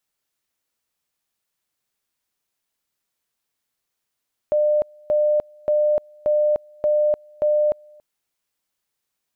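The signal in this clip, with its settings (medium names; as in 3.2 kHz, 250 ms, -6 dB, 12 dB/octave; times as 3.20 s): two-level tone 600 Hz -15 dBFS, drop 29.5 dB, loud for 0.30 s, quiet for 0.28 s, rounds 6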